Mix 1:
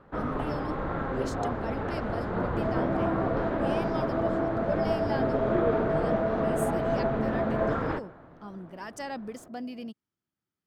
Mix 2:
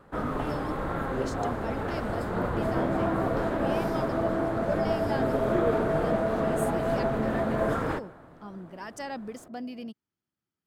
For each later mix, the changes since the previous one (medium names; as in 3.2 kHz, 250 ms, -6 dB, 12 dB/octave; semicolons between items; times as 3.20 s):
first sound: remove distance through air 160 m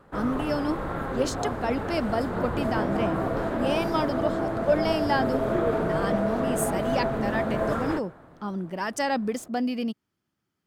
speech +10.5 dB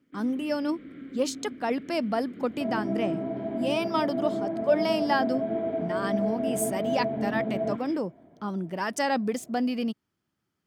first sound: add vowel filter i